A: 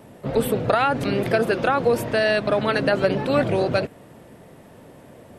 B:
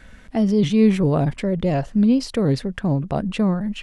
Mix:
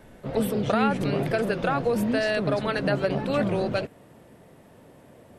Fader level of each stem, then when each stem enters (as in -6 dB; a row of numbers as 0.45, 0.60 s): -5.5, -10.5 dB; 0.00, 0.00 s